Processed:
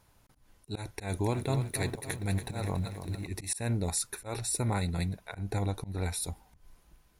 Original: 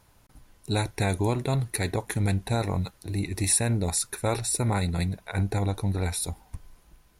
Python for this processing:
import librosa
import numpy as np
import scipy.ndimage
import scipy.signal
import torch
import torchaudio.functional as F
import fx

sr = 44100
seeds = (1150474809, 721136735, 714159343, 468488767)

y = fx.auto_swell(x, sr, attack_ms=149.0)
y = fx.echo_crushed(y, sr, ms=282, feedback_pct=55, bits=9, wet_db=-9, at=(0.8, 3.27))
y = F.gain(torch.from_numpy(y), -4.5).numpy()